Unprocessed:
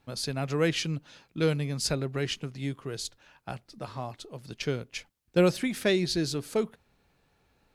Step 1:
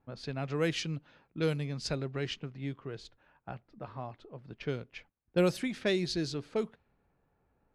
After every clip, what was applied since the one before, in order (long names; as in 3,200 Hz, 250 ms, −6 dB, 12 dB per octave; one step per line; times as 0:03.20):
low-pass that shuts in the quiet parts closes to 1,300 Hz, open at −21 dBFS
level −4.5 dB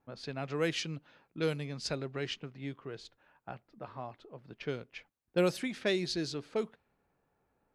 low-shelf EQ 150 Hz −9 dB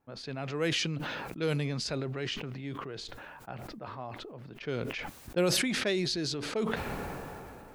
level that may fall only so fast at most 20 dB per second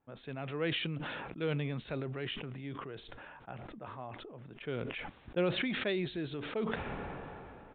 downsampling to 8,000 Hz
level −3.5 dB